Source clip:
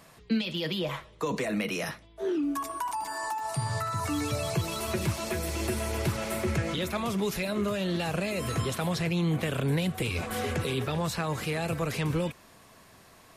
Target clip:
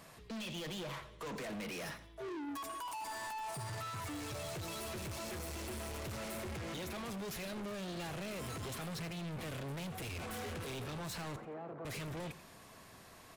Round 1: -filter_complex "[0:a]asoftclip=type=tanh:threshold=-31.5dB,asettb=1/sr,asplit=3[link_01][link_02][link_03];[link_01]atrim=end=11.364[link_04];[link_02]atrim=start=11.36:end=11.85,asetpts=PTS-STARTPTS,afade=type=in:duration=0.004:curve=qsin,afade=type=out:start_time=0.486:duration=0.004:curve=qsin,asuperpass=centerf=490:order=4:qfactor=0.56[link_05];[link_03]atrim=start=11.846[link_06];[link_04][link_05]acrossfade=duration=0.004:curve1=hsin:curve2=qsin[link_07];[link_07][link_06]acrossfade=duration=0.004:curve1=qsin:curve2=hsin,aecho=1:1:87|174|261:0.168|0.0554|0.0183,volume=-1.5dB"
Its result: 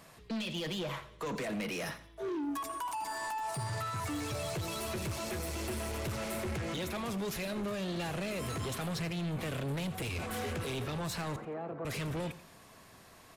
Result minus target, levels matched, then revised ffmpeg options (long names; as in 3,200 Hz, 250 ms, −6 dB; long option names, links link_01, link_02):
soft clipping: distortion −4 dB
-filter_complex "[0:a]asoftclip=type=tanh:threshold=-39.5dB,asettb=1/sr,asplit=3[link_01][link_02][link_03];[link_01]atrim=end=11.364[link_04];[link_02]atrim=start=11.36:end=11.85,asetpts=PTS-STARTPTS,afade=type=in:duration=0.004:curve=qsin,afade=type=out:start_time=0.486:duration=0.004:curve=qsin,asuperpass=centerf=490:order=4:qfactor=0.56[link_05];[link_03]atrim=start=11.846[link_06];[link_04][link_05]acrossfade=duration=0.004:curve1=hsin:curve2=qsin[link_07];[link_07][link_06]acrossfade=duration=0.004:curve1=qsin:curve2=hsin,aecho=1:1:87|174|261:0.168|0.0554|0.0183,volume=-1.5dB"